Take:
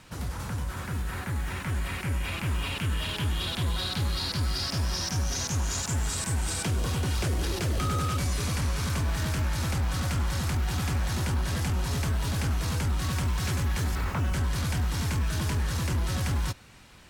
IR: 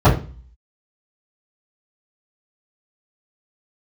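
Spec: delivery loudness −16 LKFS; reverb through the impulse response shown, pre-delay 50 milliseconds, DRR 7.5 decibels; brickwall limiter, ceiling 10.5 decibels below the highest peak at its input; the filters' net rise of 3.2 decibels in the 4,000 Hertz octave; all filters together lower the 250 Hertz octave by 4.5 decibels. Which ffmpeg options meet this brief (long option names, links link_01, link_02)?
-filter_complex "[0:a]equalizer=frequency=250:width_type=o:gain=-7.5,equalizer=frequency=4000:width_type=o:gain=4,alimiter=level_in=4.5dB:limit=-24dB:level=0:latency=1,volume=-4.5dB,asplit=2[link_01][link_02];[1:a]atrim=start_sample=2205,adelay=50[link_03];[link_02][link_03]afir=irnorm=-1:irlink=0,volume=-32.5dB[link_04];[link_01][link_04]amix=inputs=2:normalize=0,volume=12.5dB"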